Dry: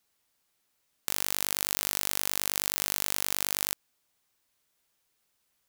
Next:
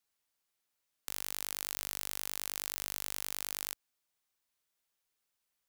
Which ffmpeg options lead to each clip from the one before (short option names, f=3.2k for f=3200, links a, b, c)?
-af "equalizer=f=140:w=0.35:g=-4,volume=-8.5dB"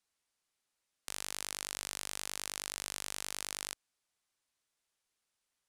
-af "lowpass=f=11k:w=0.5412,lowpass=f=11k:w=1.3066,volume=1dB"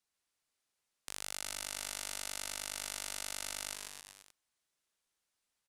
-af "aecho=1:1:140|266|379.4|481.5|573.3:0.631|0.398|0.251|0.158|0.1,volume=-2.5dB"